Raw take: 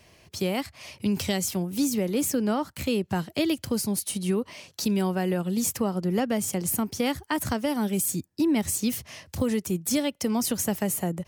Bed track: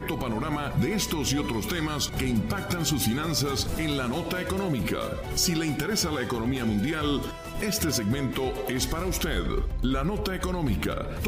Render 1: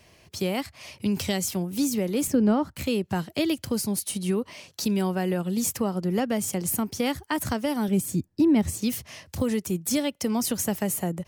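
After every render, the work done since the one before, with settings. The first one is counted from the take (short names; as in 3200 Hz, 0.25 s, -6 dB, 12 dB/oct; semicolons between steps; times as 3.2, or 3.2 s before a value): 2.27–2.77 tilt -2.5 dB/oct; 7.88–8.82 tilt -2 dB/oct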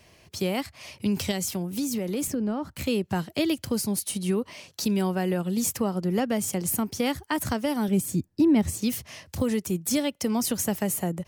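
1.31–2.81 compressor, threshold -24 dBFS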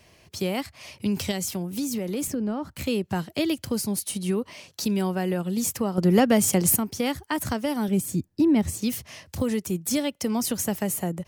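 5.98–6.76 gain +7 dB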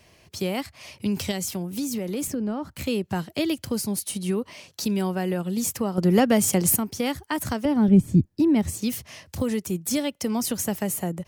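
7.65–8.26 RIAA curve playback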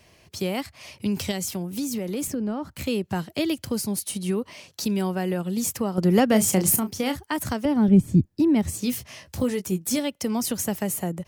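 6.28–7.17 doubler 32 ms -10 dB; 8.72–9.99 doubler 16 ms -7.5 dB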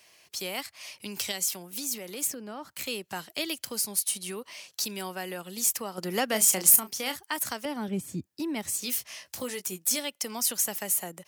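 HPF 1300 Hz 6 dB/oct; high shelf 6000 Hz +4.5 dB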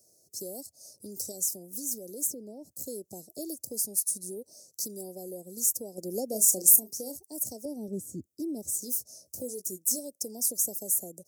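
inverse Chebyshev band-stop 1100–3200 Hz, stop band 50 dB; dynamic EQ 160 Hz, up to -7 dB, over -49 dBFS, Q 1.2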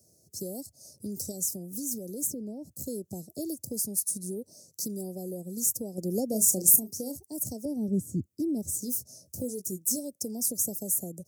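HPF 72 Hz; tone controls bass +14 dB, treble -1 dB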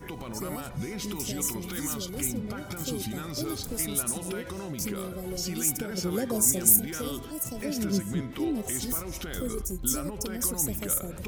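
add bed track -9 dB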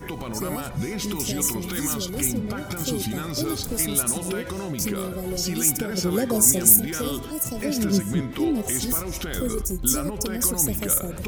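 gain +6 dB; limiter -1 dBFS, peak gain reduction 2 dB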